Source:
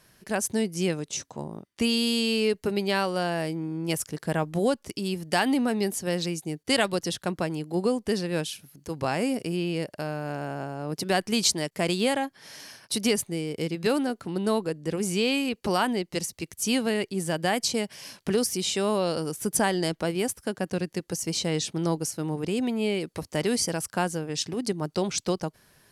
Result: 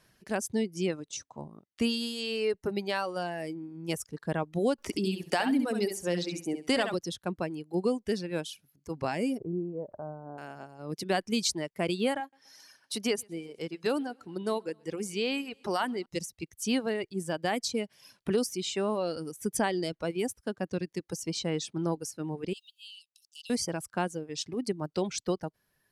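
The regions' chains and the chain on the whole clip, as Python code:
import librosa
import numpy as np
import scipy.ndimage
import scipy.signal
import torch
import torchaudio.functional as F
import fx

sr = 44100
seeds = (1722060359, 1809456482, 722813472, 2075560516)

y = fx.chain(x, sr, fx.peak_eq(hz=120.0, db=-11.5, octaves=0.5),
    fx.echo_feedback(ms=68, feedback_pct=31, wet_db=-4),
    fx.band_squash(depth_pct=70), at=(4.78, 6.94))
y = fx.chain(y, sr, fx.lowpass(hz=1000.0, slope=24),
    fx.pre_swell(db_per_s=100.0), at=(9.38, 10.38))
y = fx.chain(y, sr, fx.highpass(hz=280.0, slope=6),
    fx.echo_feedback(ms=125, feedback_pct=58, wet_db=-18.5), at=(12.2, 16.06))
y = fx.chain(y, sr, fx.law_mismatch(coded='A'),
    fx.cheby1_highpass(hz=2700.0, order=8),
    fx.high_shelf(hz=5300.0, db=-4.5), at=(22.53, 23.5))
y = fx.high_shelf(y, sr, hz=9500.0, db=-7.5)
y = fx.dereverb_blind(y, sr, rt60_s=1.9)
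y = fx.dynamic_eq(y, sr, hz=310.0, q=0.83, threshold_db=-34.0, ratio=4.0, max_db=3)
y = y * 10.0 ** (-4.5 / 20.0)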